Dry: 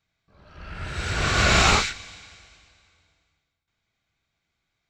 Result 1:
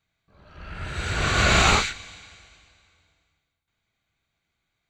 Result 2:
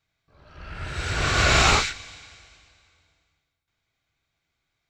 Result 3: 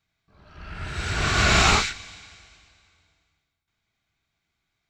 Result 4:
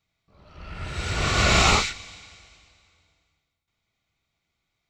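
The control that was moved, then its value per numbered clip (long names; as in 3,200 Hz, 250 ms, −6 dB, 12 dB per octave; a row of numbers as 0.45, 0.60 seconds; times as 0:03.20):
notch filter, centre frequency: 5,300, 200, 530, 1,600 Hertz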